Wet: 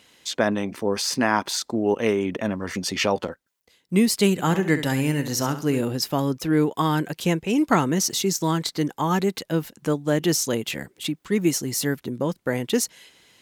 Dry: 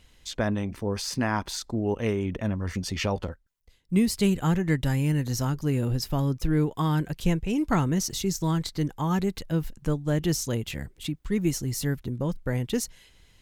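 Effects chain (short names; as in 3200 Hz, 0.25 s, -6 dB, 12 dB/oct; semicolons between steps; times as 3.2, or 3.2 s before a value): HPF 240 Hz 12 dB/oct; 4.32–5.81 flutter echo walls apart 11.6 m, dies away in 0.37 s; gain +7 dB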